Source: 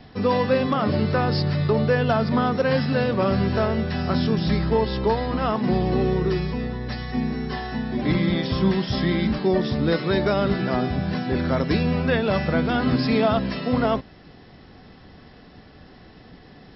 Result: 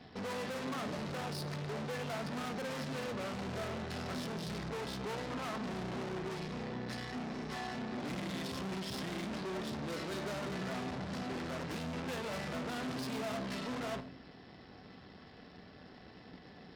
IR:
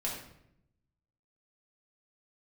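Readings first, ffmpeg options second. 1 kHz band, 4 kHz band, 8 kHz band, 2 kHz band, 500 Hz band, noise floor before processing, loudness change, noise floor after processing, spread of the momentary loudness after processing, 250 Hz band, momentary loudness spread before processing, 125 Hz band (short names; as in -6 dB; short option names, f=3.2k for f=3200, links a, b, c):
-15.0 dB, -12.0 dB, n/a, -13.5 dB, -18.0 dB, -48 dBFS, -17.0 dB, -55 dBFS, 16 LU, -17.5 dB, 5 LU, -19.5 dB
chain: -filter_complex "[0:a]aeval=exprs='(tanh(63.1*val(0)+0.8)-tanh(0.8))/63.1':c=same,highpass=f=190:p=1,asplit=2[a][b];[1:a]atrim=start_sample=2205,lowshelf=f=240:g=8[c];[b][c]afir=irnorm=-1:irlink=0,volume=-13.5dB[d];[a][d]amix=inputs=2:normalize=0,volume=-3dB"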